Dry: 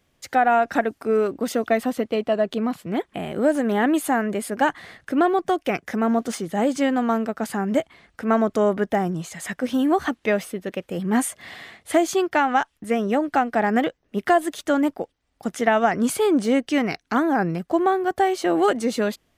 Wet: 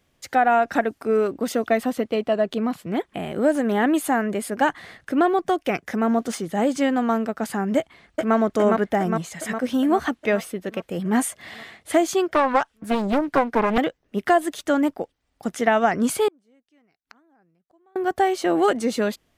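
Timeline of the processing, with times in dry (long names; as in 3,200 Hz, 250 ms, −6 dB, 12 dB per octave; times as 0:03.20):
0:07.77–0:08.35: delay throw 410 ms, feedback 65%, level −2 dB
0:12.28–0:13.78: highs frequency-modulated by the lows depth 0.88 ms
0:16.28–0:17.96: gate with flip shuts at −27 dBFS, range −40 dB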